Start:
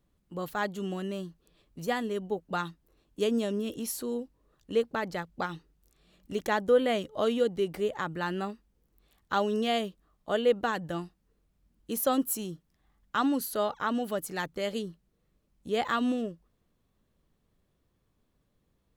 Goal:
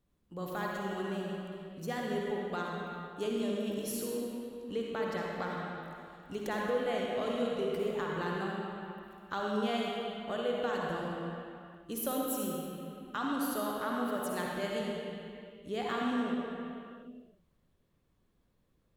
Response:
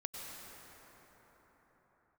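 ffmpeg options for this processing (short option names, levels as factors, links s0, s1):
-filter_complex "[0:a]acompressor=threshold=0.0282:ratio=2[s0];[1:a]atrim=start_sample=2205,asetrate=83790,aresample=44100[s1];[s0][s1]afir=irnorm=-1:irlink=0,volume=1.78"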